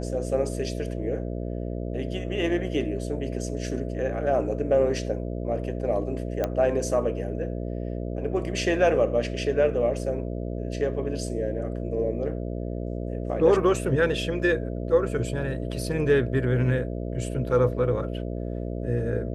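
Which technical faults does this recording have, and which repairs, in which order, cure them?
buzz 60 Hz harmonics 11 -31 dBFS
6.44 pop -13 dBFS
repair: de-click; de-hum 60 Hz, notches 11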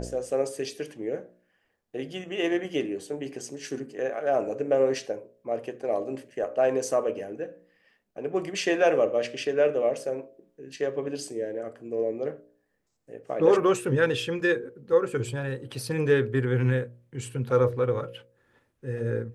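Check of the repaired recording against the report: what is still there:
none

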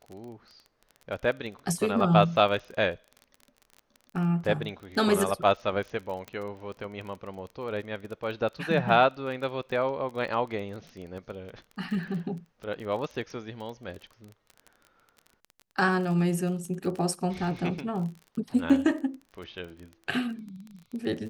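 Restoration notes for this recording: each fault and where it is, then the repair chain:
crackle 24/s -36 dBFS
6.28 pop -23 dBFS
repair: de-click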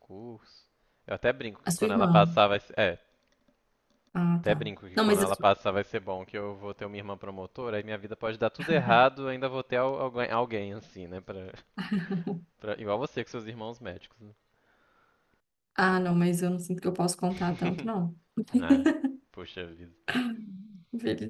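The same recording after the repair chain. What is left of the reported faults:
none

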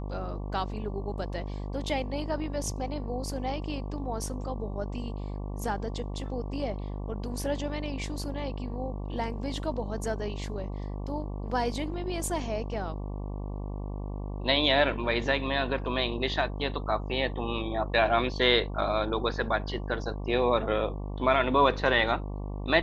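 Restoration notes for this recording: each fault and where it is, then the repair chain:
buzz 50 Hz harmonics 23 -35 dBFS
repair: de-hum 50 Hz, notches 23

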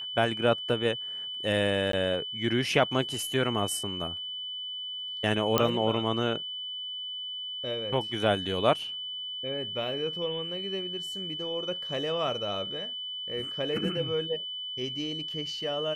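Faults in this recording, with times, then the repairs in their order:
tone 3000 Hz -34 dBFS
1.92–1.93 gap 13 ms
5.58 pop -7 dBFS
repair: de-click; notch 3000 Hz, Q 30; interpolate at 1.92, 13 ms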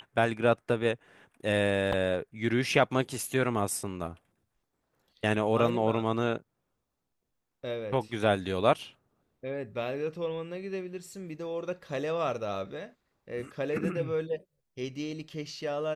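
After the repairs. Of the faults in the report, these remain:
none

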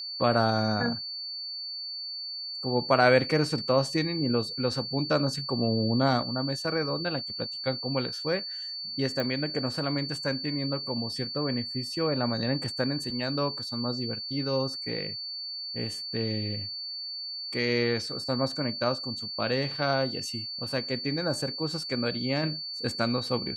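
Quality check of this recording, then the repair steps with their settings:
tone 4500 Hz -34 dBFS
9.2 pop -17 dBFS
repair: de-click; notch 4500 Hz, Q 30

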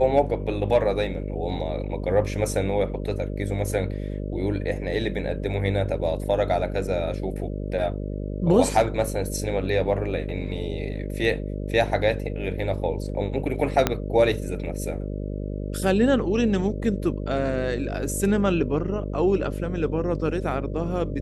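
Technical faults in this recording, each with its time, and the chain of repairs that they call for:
buzz 50 Hz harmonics 12 -30 dBFS
13.87 pop -5 dBFS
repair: de-click; de-hum 50 Hz, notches 12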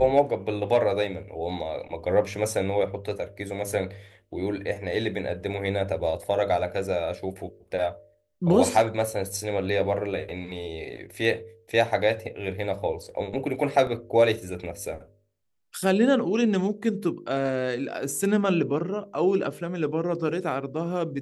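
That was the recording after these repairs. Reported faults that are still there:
13.87 pop

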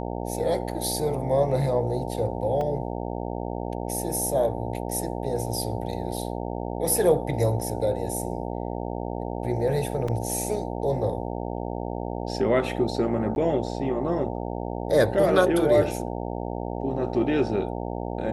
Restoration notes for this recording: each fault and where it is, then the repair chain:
buzz 60 Hz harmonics 15 -31 dBFS
2.61 gap 2.5 ms
6.17 gap 3.3 ms
10.08 gap 3.9 ms
13.35–13.36 gap 11 ms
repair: de-hum 60 Hz, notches 15; interpolate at 2.61, 2.5 ms; interpolate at 6.17, 3.3 ms; interpolate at 10.08, 3.9 ms; interpolate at 13.35, 11 ms

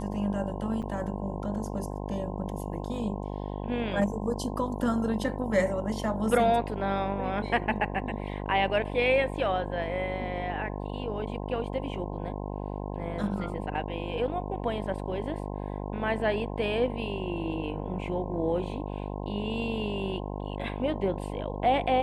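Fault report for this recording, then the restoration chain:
buzz 50 Hz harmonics 21 -35 dBFS
0.82–0.83 gap 6.6 ms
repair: de-hum 50 Hz, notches 21; interpolate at 0.82, 6.6 ms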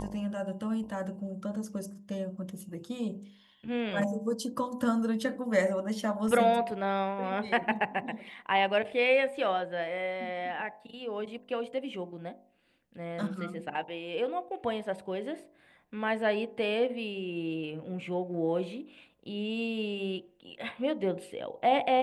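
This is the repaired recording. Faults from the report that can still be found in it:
none

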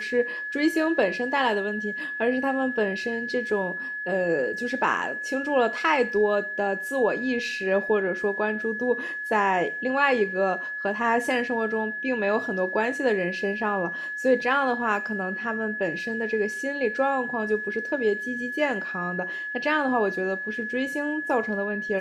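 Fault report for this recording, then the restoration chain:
tone 1700 Hz -30 dBFS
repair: notch 1700 Hz, Q 30

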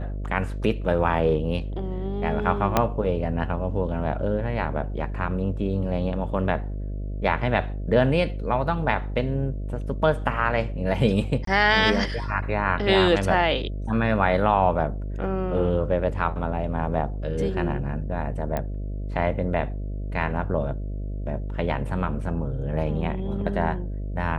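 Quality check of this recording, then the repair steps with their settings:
buzz 50 Hz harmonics 13 -30 dBFS
2.77 pop -5 dBFS
11.45–11.47 gap 23 ms
18.57 pop -14 dBFS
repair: de-click; de-hum 50 Hz, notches 13; interpolate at 11.45, 23 ms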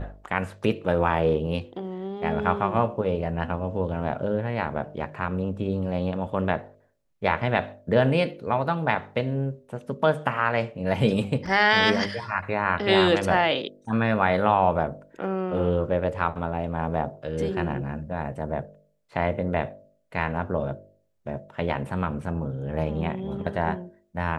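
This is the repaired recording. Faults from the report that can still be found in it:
2.77 pop

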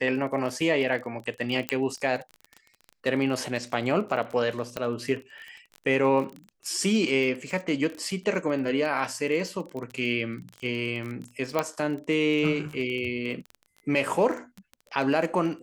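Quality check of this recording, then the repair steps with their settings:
crackle 22/s -32 dBFS
1.69 pop -9 dBFS
4.77 pop -15 dBFS
11.59 pop -11 dBFS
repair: de-click

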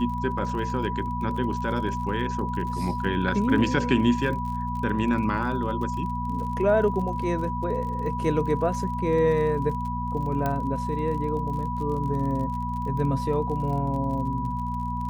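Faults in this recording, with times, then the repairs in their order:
crackle 38/s -34 dBFS
hum 60 Hz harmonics 4 -31 dBFS
tone 980 Hz -30 dBFS
10.46 pop -14 dBFS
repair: de-click; de-hum 60 Hz, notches 4; notch 980 Hz, Q 30

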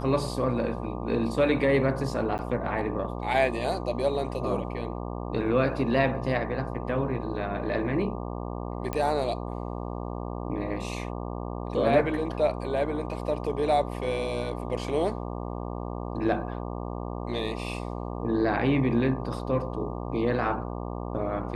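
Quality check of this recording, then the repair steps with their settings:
buzz 60 Hz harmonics 20 -34 dBFS
2.38–2.39 gap 9.6 ms
8.93 pop -16 dBFS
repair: de-click; de-hum 60 Hz, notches 20; interpolate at 2.38, 9.6 ms

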